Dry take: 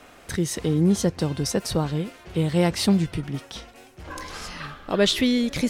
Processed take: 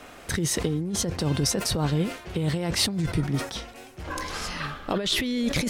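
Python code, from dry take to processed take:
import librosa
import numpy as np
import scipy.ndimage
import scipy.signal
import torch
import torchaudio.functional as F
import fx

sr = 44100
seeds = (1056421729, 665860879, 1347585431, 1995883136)

y = fx.over_compress(x, sr, threshold_db=-25.0, ratio=-1.0)
y = fx.peak_eq(y, sr, hz=2900.0, db=-7.0, octaves=0.39, at=(2.88, 3.55))
y = fx.sustainer(y, sr, db_per_s=120.0)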